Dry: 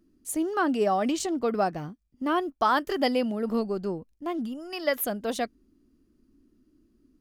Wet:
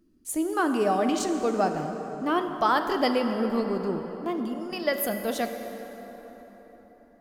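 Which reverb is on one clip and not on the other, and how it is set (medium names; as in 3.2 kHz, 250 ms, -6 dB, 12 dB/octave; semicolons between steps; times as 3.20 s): plate-style reverb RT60 4.6 s, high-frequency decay 0.55×, DRR 5.5 dB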